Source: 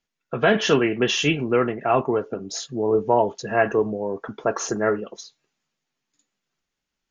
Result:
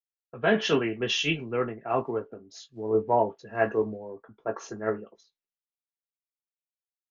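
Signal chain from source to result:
0:01.90–0:04.14: one scale factor per block 7 bits
high-frequency loss of the air 140 metres
double-tracking delay 18 ms −9 dB
multiband upward and downward expander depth 100%
level −7.5 dB

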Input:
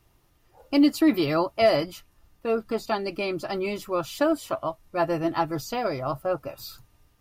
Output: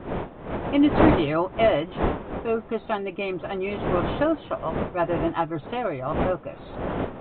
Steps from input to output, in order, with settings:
wind on the microphone 600 Hz −29 dBFS
downsampling to 8,000 Hz

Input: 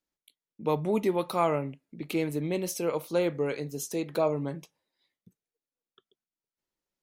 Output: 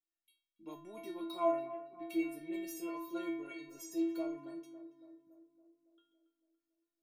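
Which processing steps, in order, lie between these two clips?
stiff-string resonator 330 Hz, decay 0.64 s, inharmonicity 0.008
tape delay 280 ms, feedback 64%, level −12 dB, low-pass 1,300 Hz
level +6.5 dB

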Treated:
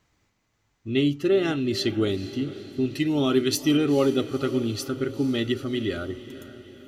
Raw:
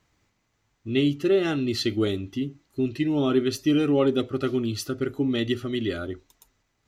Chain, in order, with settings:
0:02.91–0:03.77: high-shelf EQ 3,600 Hz +11 dB
on a send: feedback delay with all-pass diffusion 466 ms, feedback 53%, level −14.5 dB

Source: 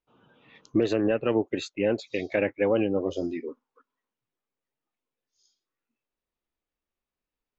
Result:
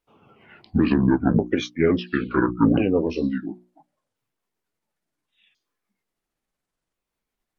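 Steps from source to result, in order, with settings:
pitch shifter swept by a sawtooth −11.5 semitones, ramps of 1,387 ms
mains-hum notches 60/120/180/240/300/360 Hz
level +7.5 dB

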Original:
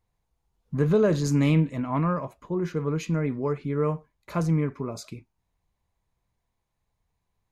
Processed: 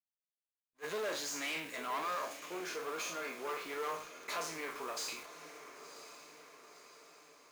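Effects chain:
peak hold with a decay on every bin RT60 0.37 s
low-pass filter 7,300 Hz 12 dB per octave
in parallel at +3 dB: downward compressor, threshold −30 dBFS, peak gain reduction 13 dB
on the sum: first difference
tube saturation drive 46 dB, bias 0.6
high-pass filter 370 Hz 12 dB per octave
high-shelf EQ 3,600 Hz −8 dB
bit reduction 11 bits
0:02.25–0:03.49: notch comb filter 990 Hz
on a send: feedback delay with all-pass diffusion 1,023 ms, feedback 53%, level −12 dB
on the sum: level that may rise only so fast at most 550 dB per second
level +13.5 dB

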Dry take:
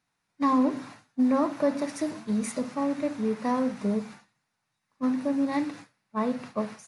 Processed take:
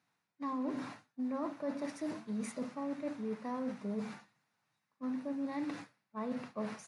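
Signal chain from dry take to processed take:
reversed playback
downward compressor 4 to 1, threshold −37 dBFS, peak gain reduction 15 dB
reversed playback
high-pass filter 110 Hz
high-shelf EQ 5,700 Hz −7 dB

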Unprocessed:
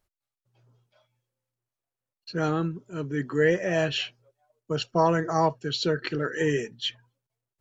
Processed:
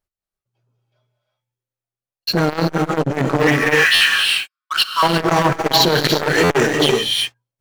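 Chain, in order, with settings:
0:03.47–0:05.03: Chebyshev band-pass filter 1,100–5,200 Hz, order 5
in parallel at −1 dB: compressor whose output falls as the input rises −28 dBFS, ratio −0.5
on the sum: leveller curve on the samples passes 5
reverb whose tail is shaped and stops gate 390 ms rising, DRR 1.5 dB
buffer that repeats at 0:03.94/0:06.43, samples 512, times 5
saturating transformer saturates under 750 Hz
level −4 dB

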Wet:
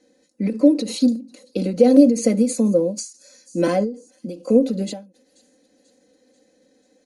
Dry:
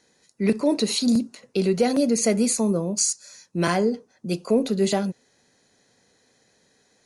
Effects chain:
parametric band 960 Hz −5.5 dB 1.1 octaves
comb filter 3.9 ms, depth 81%
hollow resonant body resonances 310/520 Hz, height 15 dB, ringing for 25 ms
on a send: delay with a high-pass on its return 489 ms, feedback 56%, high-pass 4,800 Hz, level −21 dB
on the sum: every ending faded ahead of time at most 150 dB per second
level −6.5 dB

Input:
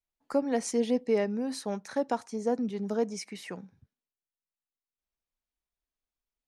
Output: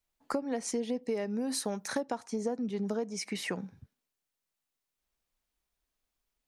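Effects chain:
0:01.03–0:02.01: high-shelf EQ 8,000 Hz +11.5 dB
downward compressor 10 to 1, threshold −37 dBFS, peak gain reduction 16 dB
level +7.5 dB

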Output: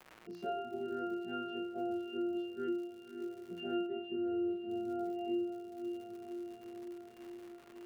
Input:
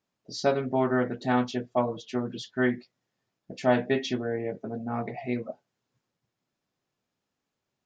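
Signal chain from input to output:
every partial snapped to a pitch grid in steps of 2 semitones
parametric band 180 Hz +12.5 dB 2.8 octaves
phaser with its sweep stopped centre 390 Hz, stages 4
resonances in every octave F, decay 0.42 s
surface crackle 180 per second −55 dBFS
0:03.86–0:04.70: high-frequency loss of the air 380 metres
feedback delay with all-pass diffusion 590 ms, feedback 49%, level −13 dB
multiband upward and downward compressor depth 70%

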